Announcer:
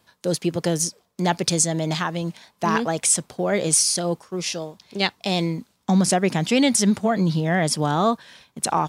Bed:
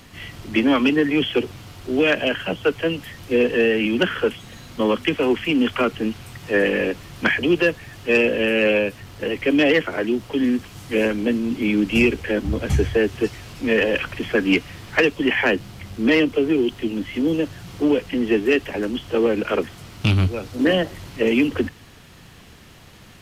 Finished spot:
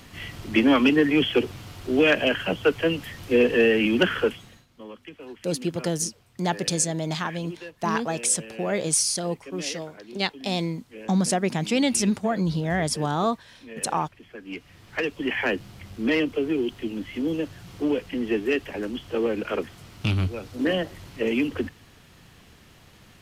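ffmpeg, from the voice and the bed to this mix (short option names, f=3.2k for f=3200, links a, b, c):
-filter_complex "[0:a]adelay=5200,volume=-4dB[a];[1:a]volume=15dB,afade=t=out:st=4.17:d=0.49:silence=0.0891251,afade=t=in:st=14.43:d=1.02:silence=0.158489[b];[a][b]amix=inputs=2:normalize=0"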